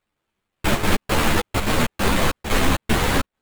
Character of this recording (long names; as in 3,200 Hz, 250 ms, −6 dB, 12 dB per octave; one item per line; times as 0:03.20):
a buzz of ramps at a fixed pitch in blocks of 8 samples
chopped level 1.2 Hz, depth 60%, duty 90%
aliases and images of a low sample rate 5,600 Hz, jitter 20%
a shimmering, thickened sound